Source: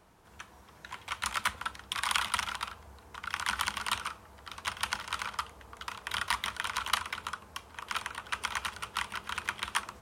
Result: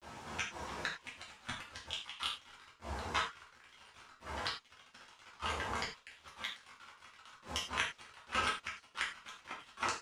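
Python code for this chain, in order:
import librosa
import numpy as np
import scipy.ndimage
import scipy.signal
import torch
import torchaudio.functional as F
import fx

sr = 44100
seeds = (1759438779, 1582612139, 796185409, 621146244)

y = scipy.signal.sosfilt(scipy.signal.butter(2, 120.0, 'highpass', fs=sr, output='sos'), x)
y = fx.high_shelf(y, sr, hz=6500.0, db=10.5)
y = fx.over_compress(y, sr, threshold_db=-36.0, ratio=-0.5)
y = fx.gate_flip(y, sr, shuts_db=-26.0, range_db=-29)
y = fx.granulator(y, sr, seeds[0], grain_ms=100.0, per_s=24.0, spray_ms=15.0, spread_st=0)
y = fx.cheby_harmonics(y, sr, harmonics=(3,), levels_db=(-13,), full_scale_db=-20.0)
y = fx.quant_dither(y, sr, seeds[1], bits=12, dither='none')
y = fx.air_absorb(y, sr, metres=100.0)
y = fx.rev_gated(y, sr, seeds[2], gate_ms=130, shape='falling', drr_db=-5.0)
y = F.gain(torch.from_numpy(y), 16.0).numpy()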